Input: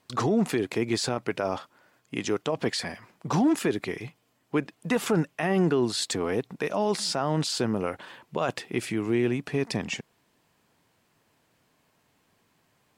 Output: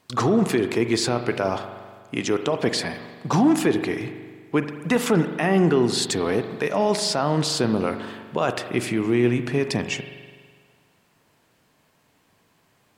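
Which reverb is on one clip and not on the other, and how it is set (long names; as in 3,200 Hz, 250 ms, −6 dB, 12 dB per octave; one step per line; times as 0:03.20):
spring reverb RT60 1.7 s, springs 41 ms, chirp 45 ms, DRR 8.5 dB
level +4.5 dB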